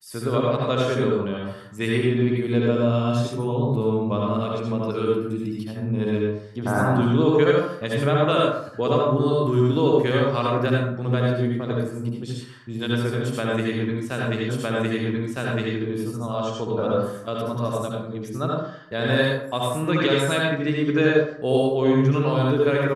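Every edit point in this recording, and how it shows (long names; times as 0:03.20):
0:14.49: the same again, the last 1.26 s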